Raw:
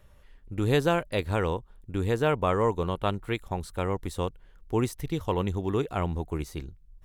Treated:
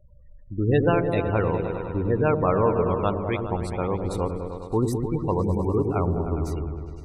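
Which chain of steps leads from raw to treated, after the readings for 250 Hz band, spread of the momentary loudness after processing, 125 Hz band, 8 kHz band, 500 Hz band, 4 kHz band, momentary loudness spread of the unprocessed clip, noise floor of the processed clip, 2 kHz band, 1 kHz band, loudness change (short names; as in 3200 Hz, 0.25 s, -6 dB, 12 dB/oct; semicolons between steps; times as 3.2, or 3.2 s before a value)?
+5.0 dB, 8 LU, +5.0 dB, -1.0 dB, +4.5 dB, -6.5 dB, 10 LU, -47 dBFS, +0.5 dB, +3.5 dB, +4.5 dB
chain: spectral gate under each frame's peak -20 dB strong; repeats that get brighter 0.102 s, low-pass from 400 Hz, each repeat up 1 oct, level -3 dB; gain +2.5 dB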